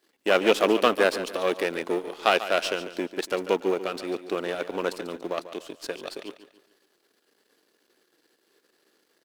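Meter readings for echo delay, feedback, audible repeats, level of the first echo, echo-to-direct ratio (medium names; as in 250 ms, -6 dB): 143 ms, 39%, 3, -13.0 dB, -12.5 dB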